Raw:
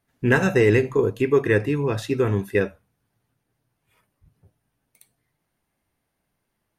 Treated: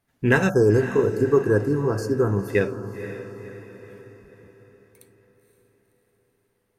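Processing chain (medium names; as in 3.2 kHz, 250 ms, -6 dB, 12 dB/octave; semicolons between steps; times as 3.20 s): spectral selection erased 0.49–2.48 s, 1.7–4.3 kHz; echo that smears into a reverb 519 ms, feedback 48%, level -11 dB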